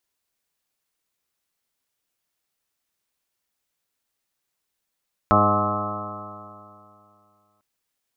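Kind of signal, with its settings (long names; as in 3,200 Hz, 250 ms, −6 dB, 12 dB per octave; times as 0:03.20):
stiff-string partials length 2.30 s, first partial 102 Hz, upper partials 0.5/−3/−6/−7/2/−1/−2.5/−12/2.5/−0.5/5 dB, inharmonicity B 0.00084, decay 2.55 s, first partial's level −22.5 dB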